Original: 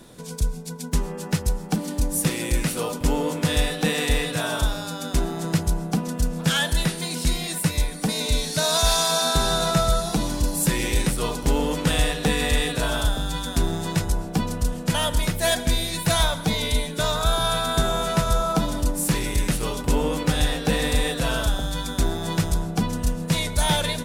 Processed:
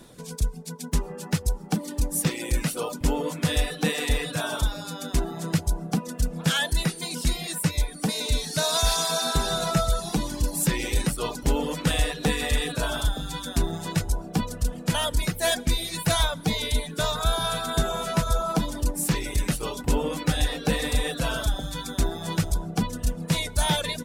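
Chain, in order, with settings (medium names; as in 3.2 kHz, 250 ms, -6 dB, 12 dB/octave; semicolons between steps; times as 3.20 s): reverb removal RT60 0.75 s; trim -1.5 dB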